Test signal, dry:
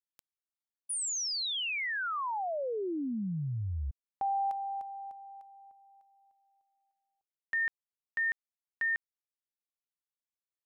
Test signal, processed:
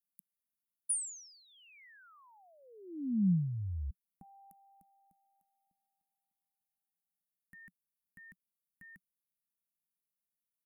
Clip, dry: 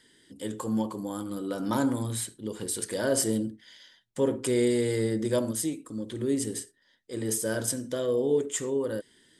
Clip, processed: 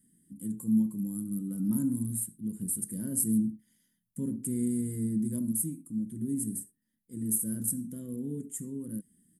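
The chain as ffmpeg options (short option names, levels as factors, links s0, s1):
-af "firequalizer=gain_entry='entry(130,0);entry(180,12);entry(380,-15);entry(590,-26);entry(2000,-21);entry(3900,-28);entry(10000,9)':delay=0.05:min_phase=1,volume=0.708"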